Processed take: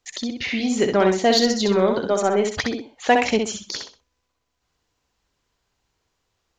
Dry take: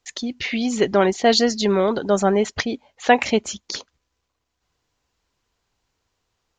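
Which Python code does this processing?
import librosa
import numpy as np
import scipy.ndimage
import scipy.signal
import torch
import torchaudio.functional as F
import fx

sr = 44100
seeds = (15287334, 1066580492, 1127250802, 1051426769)

p1 = fx.highpass(x, sr, hz=fx.line((2.07, 370.0), (2.49, 180.0)), slope=12, at=(2.07, 2.49), fade=0.02)
p2 = 10.0 ** (-14.0 / 20.0) * np.tanh(p1 / 10.0 ** (-14.0 / 20.0))
p3 = p1 + F.gain(torch.from_numpy(p2), -6.5).numpy()
p4 = fx.echo_feedback(p3, sr, ms=64, feedback_pct=26, wet_db=-5.0)
y = F.gain(torch.from_numpy(p4), -4.0).numpy()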